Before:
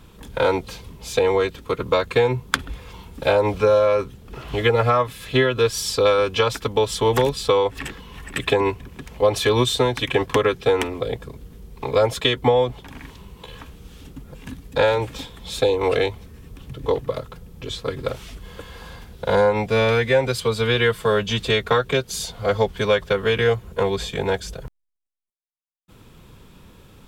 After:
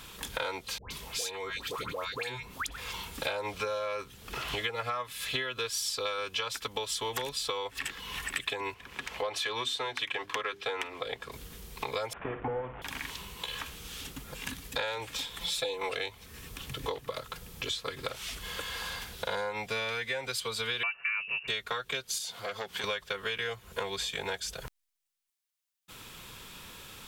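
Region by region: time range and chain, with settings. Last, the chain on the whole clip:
0:00.78–0:02.78: downward compressor 5 to 1, threshold −29 dBFS + all-pass dispersion highs, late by 126 ms, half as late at 1,100 Hz
0:08.74–0:11.32: mains-hum notches 50/100/150/200/250/300/350/400 Hz + mid-hump overdrive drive 8 dB, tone 2,200 Hz, clips at −5 dBFS
0:12.13–0:12.82: linear delta modulator 16 kbit/s, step −29.5 dBFS + low-pass filter 1,100 Hz + flutter between parallel walls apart 9.4 metres, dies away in 0.32 s
0:15.40–0:15.90: notch filter 6,600 Hz, Q 24 + comb filter 5.9 ms, depth 89%
0:20.83–0:21.48: high-pass filter 41 Hz + voice inversion scrambler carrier 2,800 Hz
0:22.18–0:22.84: high-pass filter 140 Hz + downward compressor 2 to 1, threshold −34 dBFS + saturating transformer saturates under 850 Hz
whole clip: tilt shelving filter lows −9 dB, about 800 Hz; downward compressor 5 to 1, threshold −34 dBFS; level +1 dB

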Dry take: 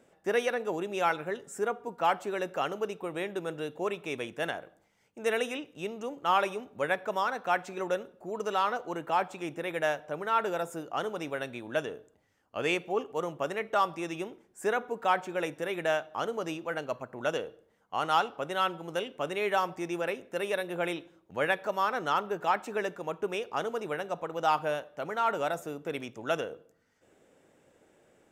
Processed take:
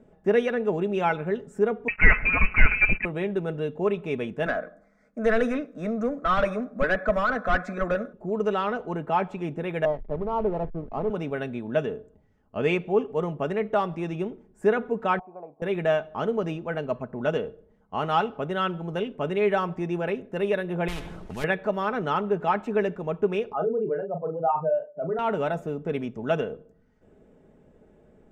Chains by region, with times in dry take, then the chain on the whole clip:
0:01.88–0:03.05: leveller curve on the samples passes 3 + voice inversion scrambler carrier 2,800 Hz
0:04.46–0:08.13: phaser with its sweep stopped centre 590 Hz, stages 8 + mid-hump overdrive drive 18 dB, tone 3,700 Hz, clips at −17 dBFS
0:09.85–0:11.10: Butterworth low-pass 1,200 Hz 72 dB per octave + slack as between gear wheels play −39.5 dBFS
0:15.19–0:15.62: formant resonators in series a + parametric band 320 Hz +8 dB 2.4 octaves
0:20.88–0:21.44: variable-slope delta modulation 64 kbit/s + every bin compressed towards the loudest bin 4 to 1
0:23.53–0:25.19: expanding power law on the bin magnitudes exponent 2.3 + double-tracking delay 37 ms −6 dB
whole clip: spectral tilt −4.5 dB per octave; comb filter 4.7 ms, depth 44%; dynamic equaliser 2,600 Hz, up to +6 dB, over −46 dBFS, Q 1

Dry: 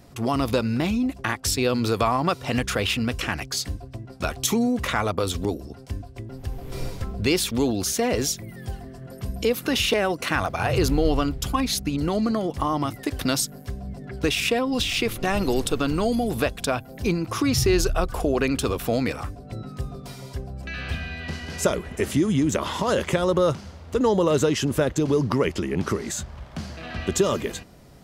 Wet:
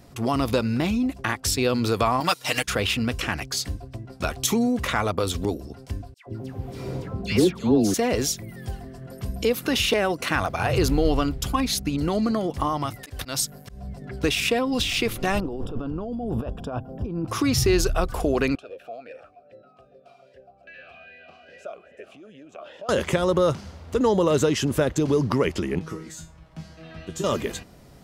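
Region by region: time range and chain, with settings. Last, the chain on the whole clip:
0:02.20–0:02.68: spectral tilt +3.5 dB per octave + comb filter 6.5 ms, depth 69% + transient designer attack +1 dB, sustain −9 dB
0:06.14–0:07.94: high-pass filter 150 Hz + spectral tilt −2.5 dB per octave + all-pass dispersion lows, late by 126 ms, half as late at 1,200 Hz
0:12.69–0:14.02: parametric band 280 Hz −6 dB 1.1 octaves + volume swells 139 ms
0:15.40–0:17.28: compressor whose output falls as the input rises −28 dBFS + moving average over 21 samples
0:18.55–0:22.89: downward compressor 3 to 1, threshold −24 dBFS + single-tap delay 268 ms −24 dB + formant filter swept between two vowels a-e 2.5 Hz
0:25.79–0:27.24: low-shelf EQ 460 Hz +4 dB + tuned comb filter 160 Hz, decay 0.28 s, mix 90%
whole clip: no processing

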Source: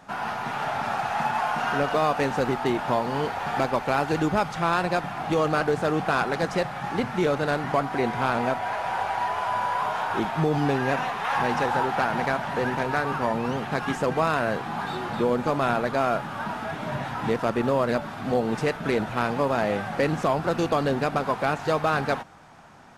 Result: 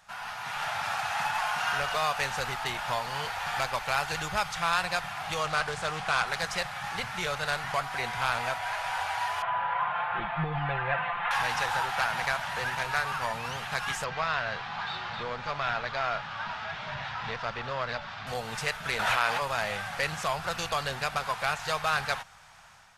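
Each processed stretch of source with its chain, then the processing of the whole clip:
0:05.43–0:06.28: low-pass filter 11,000 Hz 24 dB per octave + highs frequency-modulated by the lows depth 0.14 ms
0:09.42–0:11.31: Bessel low-pass filter 1,800 Hz, order 8 + comb filter 5.8 ms, depth 95%
0:14.04–0:18.27: low-pass filter 5,100 Hz 24 dB per octave + saturating transformer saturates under 530 Hz
0:18.99–0:19.42: bass and treble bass −13 dB, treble −4 dB + envelope flattener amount 100%
whole clip: guitar amp tone stack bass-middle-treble 10-0-10; automatic gain control gain up to 5.5 dB

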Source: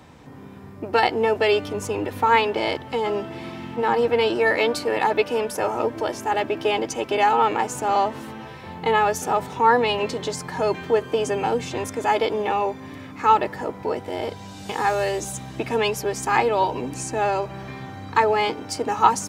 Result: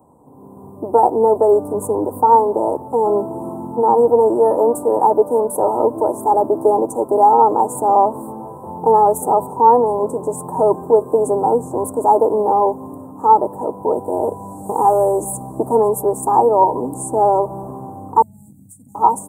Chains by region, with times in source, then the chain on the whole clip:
0:18.22–0:18.95: elliptic band-stop filter 180–6,300 Hz + downward compressor 2.5 to 1, threshold −42 dBFS
whole clip: Chebyshev band-stop filter 1,000–8,400 Hz, order 4; low-shelf EQ 150 Hz −12 dB; automatic gain control gain up to 11.5 dB

